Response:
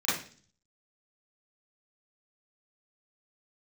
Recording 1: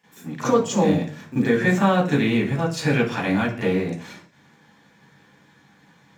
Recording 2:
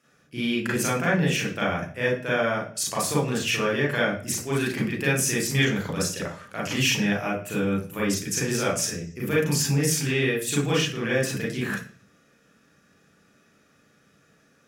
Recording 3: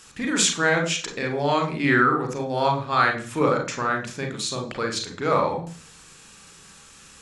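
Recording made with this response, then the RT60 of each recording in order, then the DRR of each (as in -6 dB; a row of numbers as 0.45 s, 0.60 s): 1; 0.40 s, 0.40 s, 0.45 s; -13.0 dB, -6.0 dB, 2.5 dB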